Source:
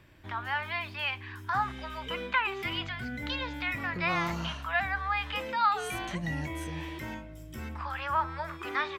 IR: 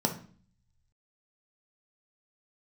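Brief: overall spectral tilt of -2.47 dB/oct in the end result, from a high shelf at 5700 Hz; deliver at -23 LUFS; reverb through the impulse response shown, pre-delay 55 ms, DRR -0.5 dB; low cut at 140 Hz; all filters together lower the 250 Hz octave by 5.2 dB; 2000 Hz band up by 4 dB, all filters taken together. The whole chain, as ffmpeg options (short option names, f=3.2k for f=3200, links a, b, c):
-filter_complex "[0:a]highpass=140,equalizer=f=250:t=o:g=-7,equalizer=f=2k:t=o:g=5.5,highshelf=f=5.7k:g=-4,asplit=2[a][b];[1:a]atrim=start_sample=2205,adelay=55[c];[b][c]afir=irnorm=-1:irlink=0,volume=-7.5dB[d];[a][d]amix=inputs=2:normalize=0,volume=4dB"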